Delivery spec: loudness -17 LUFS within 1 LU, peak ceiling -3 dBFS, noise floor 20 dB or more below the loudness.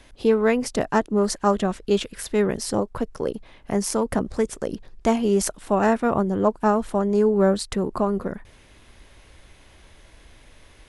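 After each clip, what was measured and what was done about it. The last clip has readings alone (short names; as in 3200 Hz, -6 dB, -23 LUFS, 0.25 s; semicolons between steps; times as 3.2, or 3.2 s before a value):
loudness -23.0 LUFS; peak -6.5 dBFS; loudness target -17.0 LUFS
-> gain +6 dB; limiter -3 dBFS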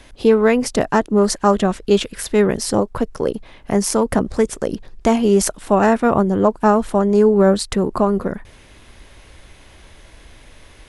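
loudness -17.5 LUFS; peak -3.0 dBFS; noise floor -46 dBFS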